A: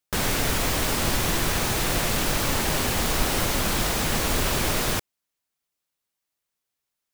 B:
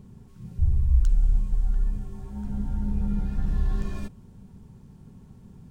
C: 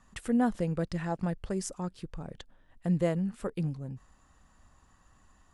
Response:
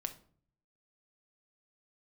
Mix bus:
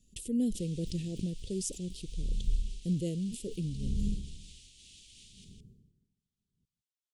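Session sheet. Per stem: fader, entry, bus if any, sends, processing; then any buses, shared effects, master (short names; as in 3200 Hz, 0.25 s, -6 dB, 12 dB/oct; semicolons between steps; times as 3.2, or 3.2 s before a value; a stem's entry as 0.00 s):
-7.5 dB, 0.45 s, no send, echo send -15.5 dB, Chebyshev band-pass 1000–9600 Hz, order 5; limiter -25 dBFS, peak gain reduction 8.5 dB; auto duck -10 dB, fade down 0.85 s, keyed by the third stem
-2.5 dB, 0.95 s, no send, echo send -15.5 dB, dB-linear tremolo 0.65 Hz, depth 38 dB
-0.5 dB, 0.00 s, no send, no echo send, high shelf 6100 Hz +11.5 dB; sustainer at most 76 dB/s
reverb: off
echo: echo 0.16 s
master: Chebyshev band-stop 430–3000 Hz, order 3; high shelf 8500 Hz -5.5 dB; noise-modulated level, depth 50%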